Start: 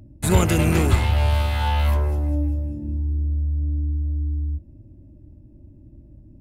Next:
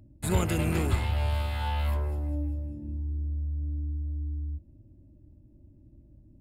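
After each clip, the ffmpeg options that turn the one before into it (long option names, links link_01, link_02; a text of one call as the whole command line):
ffmpeg -i in.wav -af "bandreject=frequency=6000:width=5.8,volume=-8.5dB" out.wav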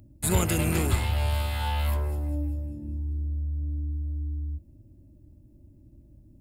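ffmpeg -i in.wav -af "highshelf=frequency=5300:gain=10,volume=1.5dB" out.wav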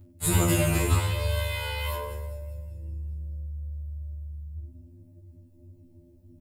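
ffmpeg -i in.wav -filter_complex "[0:a]asplit=2[link_01][link_02];[link_02]aecho=0:1:20|52|103.2|185.1|316.2:0.631|0.398|0.251|0.158|0.1[link_03];[link_01][link_03]amix=inputs=2:normalize=0,afftfilt=real='re*2*eq(mod(b,4),0)':imag='im*2*eq(mod(b,4),0)':win_size=2048:overlap=0.75,volume=2dB" out.wav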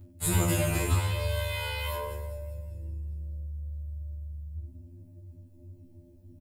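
ffmpeg -i in.wav -filter_complex "[0:a]asplit=2[link_01][link_02];[link_02]acompressor=threshold=-34dB:ratio=6,volume=-0.5dB[link_03];[link_01][link_03]amix=inputs=2:normalize=0,asplit=2[link_04][link_05];[link_05]adelay=22,volume=-12dB[link_06];[link_04][link_06]amix=inputs=2:normalize=0,volume=-5dB" out.wav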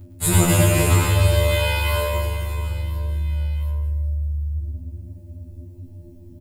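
ffmpeg -i in.wav -af "aecho=1:1:110|286|567.6|1018|1739:0.631|0.398|0.251|0.158|0.1,volume=8dB" out.wav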